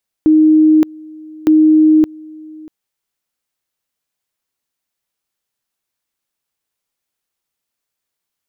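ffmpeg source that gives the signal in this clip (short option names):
-f lavfi -i "aevalsrc='pow(10,(-5.5-25*gte(mod(t,1.21),0.57))/20)*sin(2*PI*311*t)':d=2.42:s=44100"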